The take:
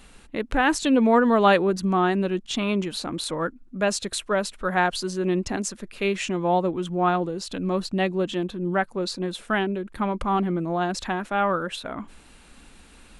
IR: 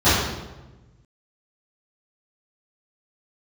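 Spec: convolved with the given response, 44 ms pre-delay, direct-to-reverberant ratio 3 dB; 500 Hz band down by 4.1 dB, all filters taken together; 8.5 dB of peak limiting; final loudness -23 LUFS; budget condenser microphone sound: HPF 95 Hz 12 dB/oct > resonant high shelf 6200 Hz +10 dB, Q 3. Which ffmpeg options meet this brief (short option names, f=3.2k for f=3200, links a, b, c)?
-filter_complex "[0:a]equalizer=f=500:t=o:g=-5.5,alimiter=limit=-17dB:level=0:latency=1,asplit=2[a][b];[1:a]atrim=start_sample=2205,adelay=44[c];[b][c]afir=irnorm=-1:irlink=0,volume=-26.5dB[d];[a][d]amix=inputs=2:normalize=0,highpass=95,highshelf=f=6.2k:t=q:w=3:g=10,volume=1dB"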